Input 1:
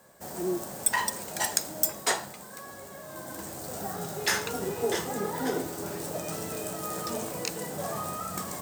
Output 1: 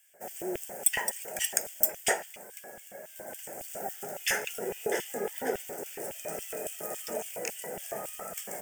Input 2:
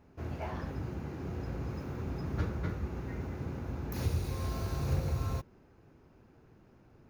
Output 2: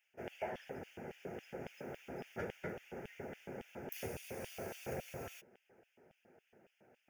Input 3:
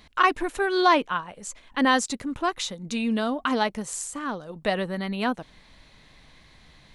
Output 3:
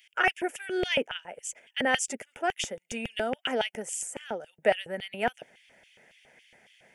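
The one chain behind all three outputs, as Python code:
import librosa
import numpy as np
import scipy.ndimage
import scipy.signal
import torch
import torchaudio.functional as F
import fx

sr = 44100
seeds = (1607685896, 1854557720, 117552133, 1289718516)

y = fx.filter_lfo_highpass(x, sr, shape='square', hz=3.6, low_hz=290.0, high_hz=3100.0, q=3.3)
y = fx.fixed_phaser(y, sr, hz=1100.0, stages=6)
y = fx.hpss(y, sr, part='percussive', gain_db=5)
y = y * 10.0 ** (-3.0 / 20.0)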